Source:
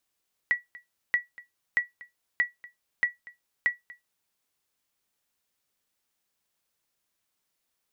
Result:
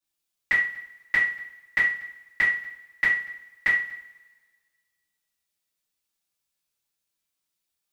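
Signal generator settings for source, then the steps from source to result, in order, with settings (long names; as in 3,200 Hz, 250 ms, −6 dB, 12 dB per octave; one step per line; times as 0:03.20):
ping with an echo 1,940 Hz, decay 0.16 s, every 0.63 s, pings 6, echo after 0.24 s, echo −21.5 dB −15 dBFS
coupled-rooms reverb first 0.45 s, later 2.3 s, from −22 dB, DRR −9 dB
multiband upward and downward expander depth 40%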